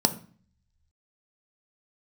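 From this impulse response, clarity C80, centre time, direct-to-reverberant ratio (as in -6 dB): 19.0 dB, 6 ms, 8.0 dB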